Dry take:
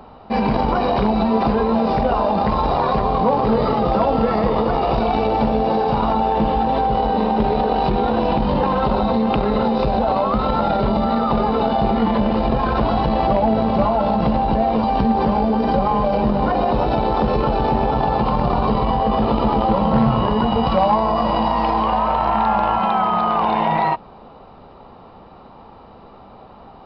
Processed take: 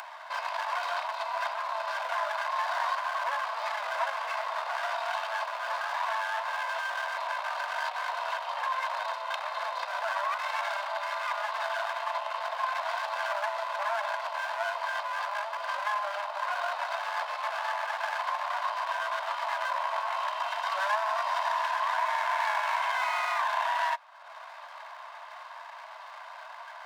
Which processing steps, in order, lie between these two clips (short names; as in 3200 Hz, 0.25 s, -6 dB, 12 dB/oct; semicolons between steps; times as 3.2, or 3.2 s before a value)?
minimum comb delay 1.9 ms; steep high-pass 660 Hz 72 dB/oct; upward compressor, threshold -26 dBFS; gain -7 dB